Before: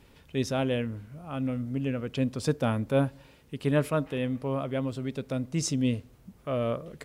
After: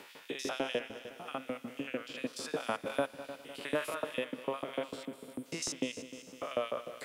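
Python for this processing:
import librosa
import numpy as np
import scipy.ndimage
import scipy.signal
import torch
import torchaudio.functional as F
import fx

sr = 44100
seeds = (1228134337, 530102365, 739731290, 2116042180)

y = fx.spec_steps(x, sr, hold_ms=100)
y = fx.ellip_bandstop(y, sr, low_hz=350.0, high_hz=8000.0, order=3, stop_db=40, at=(5.05, 5.46))
y = fx.filter_lfo_highpass(y, sr, shape='saw_up', hz=6.7, low_hz=320.0, high_hz=4100.0, q=0.81)
y = fx.echo_heads(y, sr, ms=101, heads='second and third', feedback_pct=42, wet_db=-17.0)
y = fx.band_squash(y, sr, depth_pct=40)
y = y * 10.0 ** (2.0 / 20.0)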